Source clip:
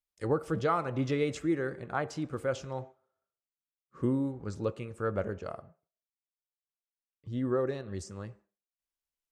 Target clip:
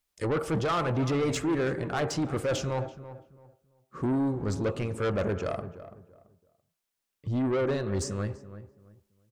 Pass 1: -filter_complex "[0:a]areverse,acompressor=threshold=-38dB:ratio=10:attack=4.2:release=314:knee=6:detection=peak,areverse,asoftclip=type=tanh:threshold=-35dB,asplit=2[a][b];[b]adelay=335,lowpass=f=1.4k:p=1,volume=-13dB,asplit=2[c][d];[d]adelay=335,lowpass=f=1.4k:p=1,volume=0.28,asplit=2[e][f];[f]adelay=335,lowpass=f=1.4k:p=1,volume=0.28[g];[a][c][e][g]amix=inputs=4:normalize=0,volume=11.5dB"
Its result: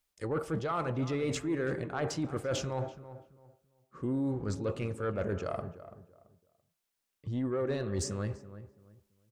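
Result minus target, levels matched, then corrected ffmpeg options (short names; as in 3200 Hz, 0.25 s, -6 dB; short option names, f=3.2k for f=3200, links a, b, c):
compressor: peak gain reduction +11 dB
-filter_complex "[0:a]areverse,acompressor=threshold=-26dB:ratio=10:attack=4.2:release=314:knee=6:detection=peak,areverse,asoftclip=type=tanh:threshold=-35dB,asplit=2[a][b];[b]adelay=335,lowpass=f=1.4k:p=1,volume=-13dB,asplit=2[c][d];[d]adelay=335,lowpass=f=1.4k:p=1,volume=0.28,asplit=2[e][f];[f]adelay=335,lowpass=f=1.4k:p=1,volume=0.28[g];[a][c][e][g]amix=inputs=4:normalize=0,volume=11.5dB"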